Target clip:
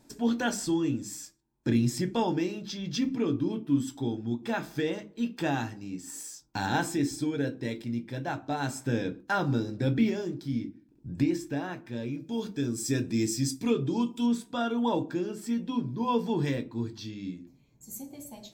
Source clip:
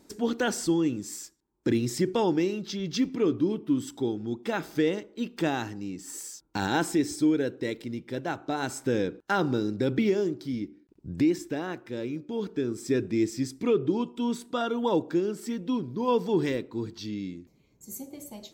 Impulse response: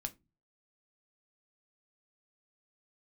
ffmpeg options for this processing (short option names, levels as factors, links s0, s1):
-filter_complex "[0:a]asettb=1/sr,asplit=3[s0][s1][s2];[s0]atrim=end=12.204[s3];[s1]atrim=start=12.2:end=14.26,asetpts=PTS-STARTPTS,afade=t=in:d=0.004:c=qsin,afade=t=out:st=2.056:d=0.004:c=qsin,bass=f=250:g=0,treble=f=4000:g=11[s4];[s2]atrim=start=14.256[s5];[s3][s4]acrossfade=d=0.004:c1=hsin:c2=qsin[s6];[s6][s5]acrossfade=d=0.004:c1=qsin:c2=hsin[s7];[1:a]atrim=start_sample=2205[s8];[s7][s8]afir=irnorm=-1:irlink=0"